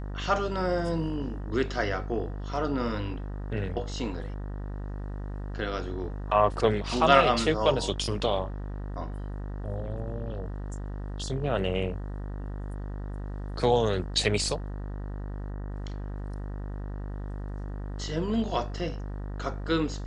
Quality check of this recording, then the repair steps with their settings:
mains buzz 50 Hz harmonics 38 −35 dBFS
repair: hum removal 50 Hz, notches 38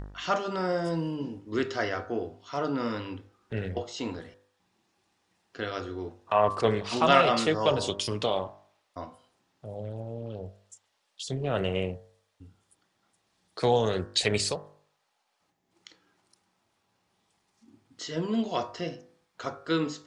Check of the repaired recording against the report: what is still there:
none of them is left

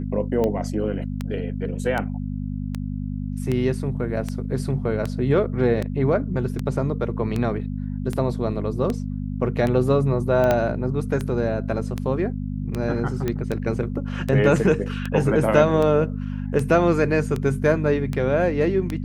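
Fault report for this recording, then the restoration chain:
mains hum 50 Hz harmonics 5 −28 dBFS
scratch tick 78 rpm −13 dBFS
0:10.51: click −7 dBFS
0:13.28: click −12 dBFS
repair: click removal
hum removal 50 Hz, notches 5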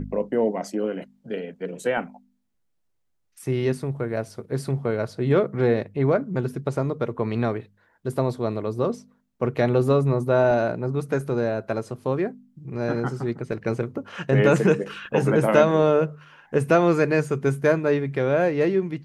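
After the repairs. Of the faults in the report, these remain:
0:10.51: click

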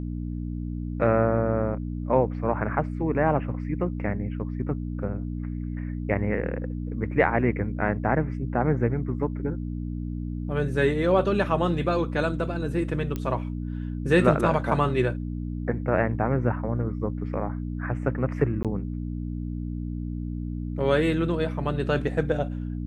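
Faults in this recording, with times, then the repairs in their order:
mains hum 60 Hz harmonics 5 −31 dBFS
0:13.16: click −17 dBFS
0:18.63–0:18.65: drop-out 17 ms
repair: click removal
hum removal 60 Hz, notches 5
repair the gap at 0:18.63, 17 ms

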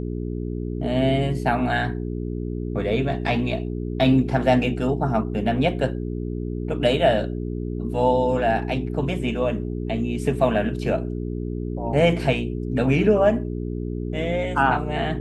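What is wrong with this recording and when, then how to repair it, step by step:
mains hum 60 Hz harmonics 7 −28 dBFS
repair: hum removal 60 Hz, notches 7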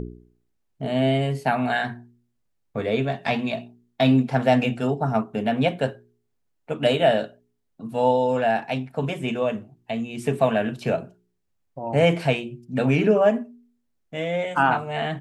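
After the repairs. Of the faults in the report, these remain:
none of them is left

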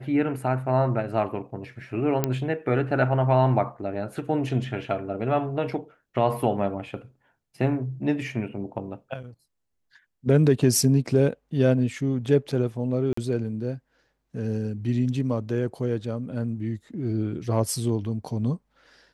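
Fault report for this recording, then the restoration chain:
0:02.24: click −8 dBFS
0:13.13–0:13.17: drop-out 44 ms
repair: click removal
repair the gap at 0:13.13, 44 ms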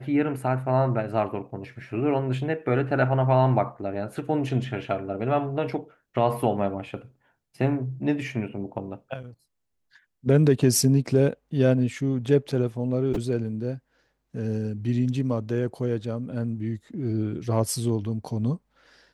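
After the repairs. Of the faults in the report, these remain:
none of them is left

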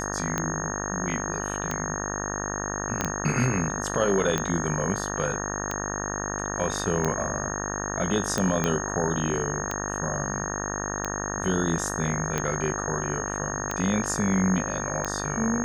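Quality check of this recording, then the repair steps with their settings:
mains buzz 50 Hz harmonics 37 −32 dBFS
scratch tick 45 rpm −12 dBFS
whistle 6,500 Hz −33 dBFS
0:03.01: click −9 dBFS
0:08.64: click −11 dBFS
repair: click removal
notch filter 6,500 Hz, Q 30
hum removal 50 Hz, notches 37

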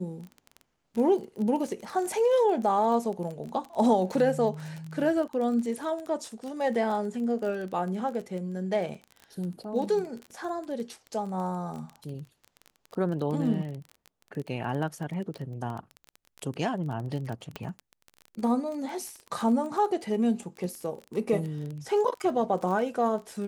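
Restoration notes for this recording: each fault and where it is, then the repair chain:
surface crackle 21 per second −33 dBFS
0:17.56: click −20 dBFS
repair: click removal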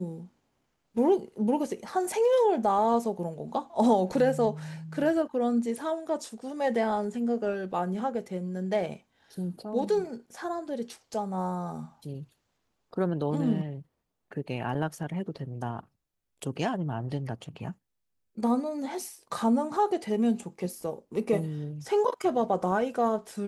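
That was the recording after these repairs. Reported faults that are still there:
0:17.56: click

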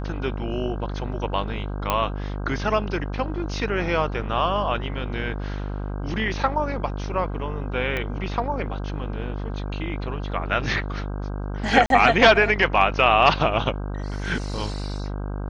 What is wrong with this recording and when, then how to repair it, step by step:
mains buzz 50 Hz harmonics 32 −29 dBFS
0:01.90: click −7 dBFS
0:07.97: click −14 dBFS
0:11.86–0:11.90: drop-out 42 ms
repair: click removal
hum removal 50 Hz, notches 32
repair the gap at 0:11.86, 42 ms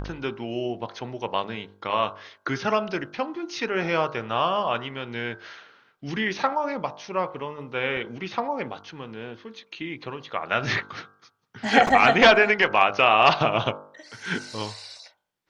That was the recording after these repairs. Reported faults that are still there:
0:07.97: click

